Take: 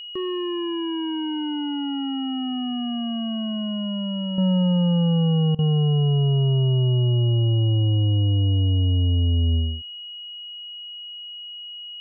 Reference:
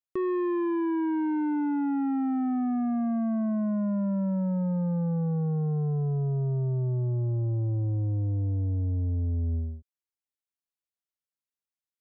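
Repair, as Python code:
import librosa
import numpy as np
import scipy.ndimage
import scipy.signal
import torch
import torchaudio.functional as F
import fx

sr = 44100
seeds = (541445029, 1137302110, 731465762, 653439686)

y = fx.notch(x, sr, hz=2900.0, q=30.0)
y = fx.fix_interpolate(y, sr, at_s=(5.55,), length_ms=37.0)
y = fx.fix_level(y, sr, at_s=4.38, step_db=-8.0)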